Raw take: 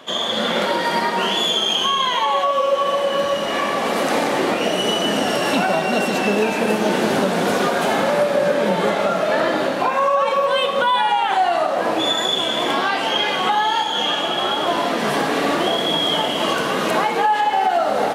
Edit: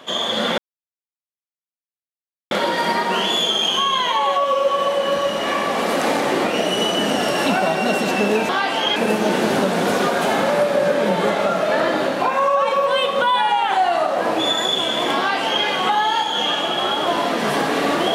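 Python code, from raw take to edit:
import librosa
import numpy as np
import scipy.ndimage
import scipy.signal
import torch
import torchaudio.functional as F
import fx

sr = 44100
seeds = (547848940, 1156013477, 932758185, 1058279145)

y = fx.edit(x, sr, fx.insert_silence(at_s=0.58, length_s=1.93),
    fx.duplicate(start_s=12.78, length_s=0.47, to_s=6.56), tone=tone)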